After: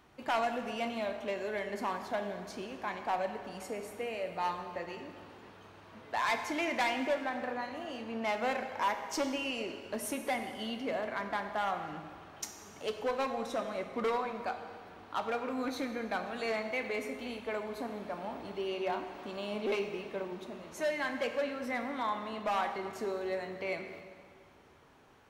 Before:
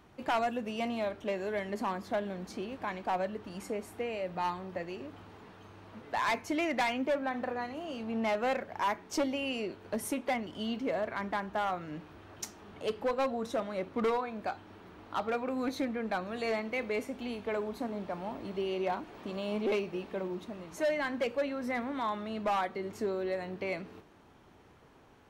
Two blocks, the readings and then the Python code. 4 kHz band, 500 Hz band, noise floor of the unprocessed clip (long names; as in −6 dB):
+0.5 dB, −2.0 dB, −59 dBFS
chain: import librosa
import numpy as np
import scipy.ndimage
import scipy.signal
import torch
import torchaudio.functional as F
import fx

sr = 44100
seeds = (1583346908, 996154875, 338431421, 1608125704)

y = fx.low_shelf(x, sr, hz=480.0, db=-6.0)
y = fx.rev_plate(y, sr, seeds[0], rt60_s=2.0, hf_ratio=0.85, predelay_ms=0, drr_db=6.0)